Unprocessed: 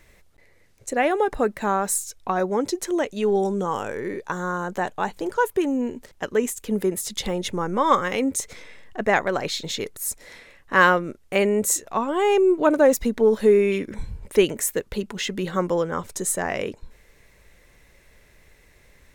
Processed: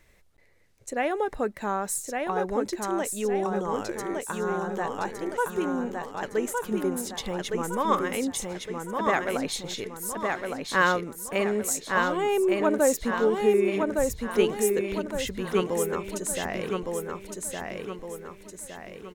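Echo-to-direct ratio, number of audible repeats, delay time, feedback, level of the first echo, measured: -2.5 dB, 5, 1.162 s, 46%, -3.5 dB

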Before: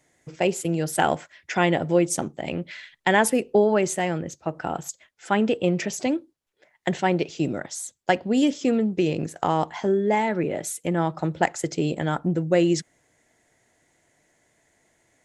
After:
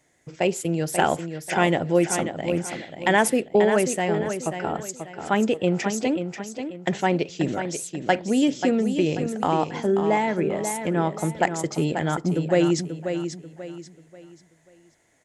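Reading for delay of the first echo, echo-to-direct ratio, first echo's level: 0.537 s, -7.5 dB, -8.0 dB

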